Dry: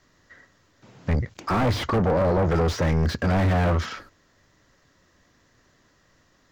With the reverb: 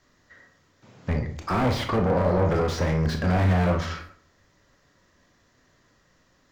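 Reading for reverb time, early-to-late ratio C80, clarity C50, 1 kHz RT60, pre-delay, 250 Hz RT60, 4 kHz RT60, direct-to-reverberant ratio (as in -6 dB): 0.50 s, 13.0 dB, 8.5 dB, 0.50 s, 23 ms, 0.55 s, 0.35 s, 3.5 dB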